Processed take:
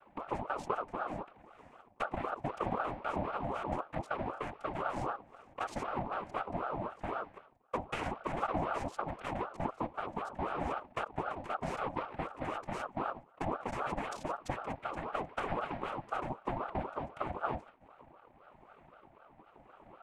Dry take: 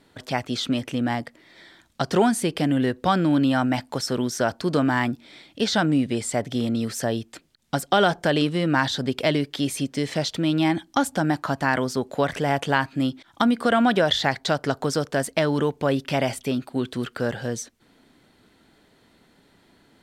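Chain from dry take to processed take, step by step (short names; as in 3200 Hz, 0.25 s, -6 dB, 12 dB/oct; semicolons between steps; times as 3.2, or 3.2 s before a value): Wiener smoothing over 25 samples; tilt -4.5 dB/oct; notches 50/100/150/200/250/300/350/400/450/500 Hz; dynamic EQ 520 Hz, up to -6 dB, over -35 dBFS, Q 3.7; compressor 12:1, threshold -27 dBFS, peak gain reduction 19.5 dB; rotary speaker horn 1 Hz; noise vocoder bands 3; ring modulator with a swept carrier 720 Hz, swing 45%, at 3.9 Hz; gain -2 dB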